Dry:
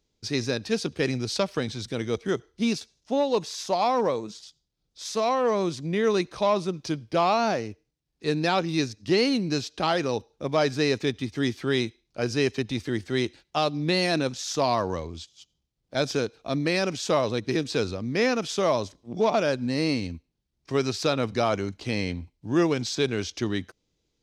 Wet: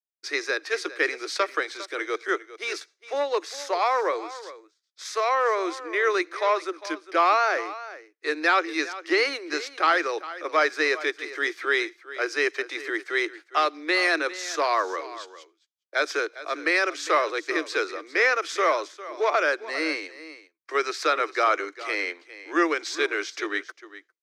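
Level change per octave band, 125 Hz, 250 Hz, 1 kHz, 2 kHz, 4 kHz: under -40 dB, -7.0 dB, +3.5 dB, +8.5 dB, -1.5 dB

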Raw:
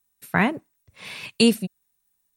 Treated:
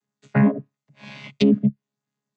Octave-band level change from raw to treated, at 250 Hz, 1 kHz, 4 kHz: +4.0 dB, -5.5 dB, -9.0 dB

